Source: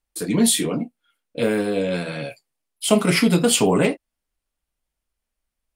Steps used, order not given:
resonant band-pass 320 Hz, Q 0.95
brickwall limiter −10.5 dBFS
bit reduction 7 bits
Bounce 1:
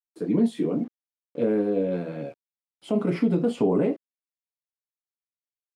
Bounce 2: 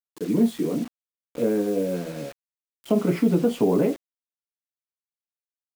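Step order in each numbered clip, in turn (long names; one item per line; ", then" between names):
bit reduction, then brickwall limiter, then resonant band-pass
resonant band-pass, then bit reduction, then brickwall limiter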